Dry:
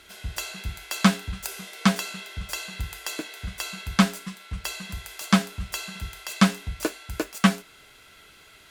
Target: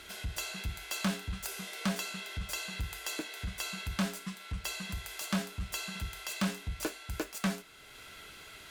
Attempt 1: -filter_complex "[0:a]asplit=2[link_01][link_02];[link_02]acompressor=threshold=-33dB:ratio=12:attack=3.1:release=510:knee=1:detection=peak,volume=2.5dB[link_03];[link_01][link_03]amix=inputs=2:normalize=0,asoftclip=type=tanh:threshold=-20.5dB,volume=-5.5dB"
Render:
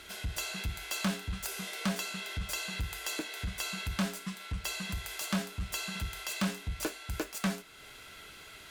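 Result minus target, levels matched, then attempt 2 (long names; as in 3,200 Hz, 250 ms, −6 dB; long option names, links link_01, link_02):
downward compressor: peak gain reduction −6.5 dB
-filter_complex "[0:a]asplit=2[link_01][link_02];[link_02]acompressor=threshold=-40dB:ratio=12:attack=3.1:release=510:knee=1:detection=peak,volume=2.5dB[link_03];[link_01][link_03]amix=inputs=2:normalize=0,asoftclip=type=tanh:threshold=-20.5dB,volume=-5.5dB"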